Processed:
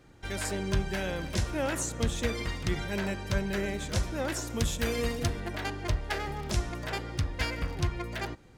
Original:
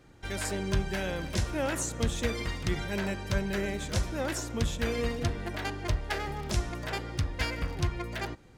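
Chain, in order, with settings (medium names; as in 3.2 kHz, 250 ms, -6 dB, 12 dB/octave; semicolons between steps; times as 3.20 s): 4.47–5.40 s: treble shelf 7 kHz +11 dB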